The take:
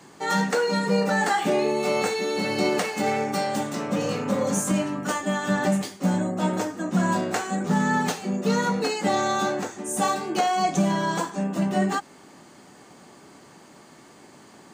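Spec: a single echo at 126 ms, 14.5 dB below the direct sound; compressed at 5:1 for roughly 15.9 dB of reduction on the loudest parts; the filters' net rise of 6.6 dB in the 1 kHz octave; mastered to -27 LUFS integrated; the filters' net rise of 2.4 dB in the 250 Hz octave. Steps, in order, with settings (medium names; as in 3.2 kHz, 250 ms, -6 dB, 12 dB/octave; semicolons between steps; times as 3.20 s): peaking EQ 250 Hz +3 dB; peaking EQ 1 kHz +8.5 dB; compression 5:1, threshold -33 dBFS; delay 126 ms -14.5 dB; trim +7.5 dB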